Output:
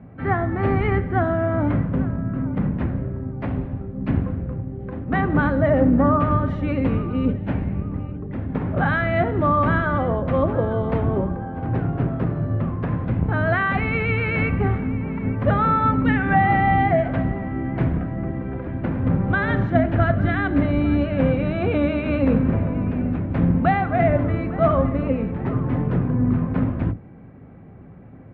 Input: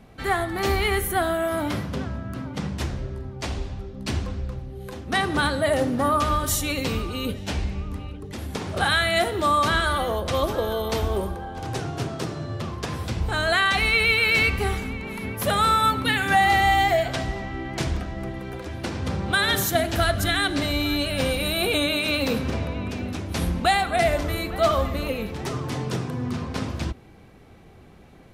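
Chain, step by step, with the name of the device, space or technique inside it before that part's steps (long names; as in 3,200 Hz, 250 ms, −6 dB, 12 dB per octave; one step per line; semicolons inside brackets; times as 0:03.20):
sub-octave bass pedal (sub-octave generator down 2 octaves, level +2 dB; loudspeaker in its box 62–2,000 Hz, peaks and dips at 110 Hz +10 dB, 170 Hz +9 dB, 260 Hz +9 dB, 560 Hz +4 dB)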